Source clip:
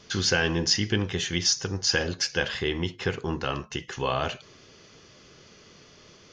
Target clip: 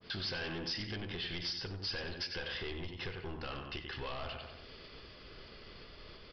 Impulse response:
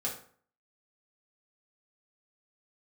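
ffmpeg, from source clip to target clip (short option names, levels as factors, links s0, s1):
-filter_complex "[0:a]agate=range=0.0224:threshold=0.00447:ratio=3:detection=peak,asplit=2[s0][s1];[s1]adelay=93,lowpass=f=4200:p=1,volume=0.376,asplit=2[s2][s3];[s3]adelay=93,lowpass=f=4200:p=1,volume=0.39,asplit=2[s4][s5];[s5]adelay=93,lowpass=f=4200:p=1,volume=0.39,asplit=2[s6][s7];[s7]adelay=93,lowpass=f=4200:p=1,volume=0.39[s8];[s0][s2][s4][s6][s8]amix=inputs=5:normalize=0,aresample=11025,asoftclip=type=tanh:threshold=0.0473,aresample=44100,asubboost=boost=8:cutoff=51,acompressor=threshold=0.00355:ratio=3,adynamicequalizer=threshold=0.00141:dfrequency=2100:dqfactor=0.7:tfrequency=2100:tqfactor=0.7:attack=5:release=100:ratio=0.375:range=2:mode=boostabove:tftype=highshelf,volume=1.68"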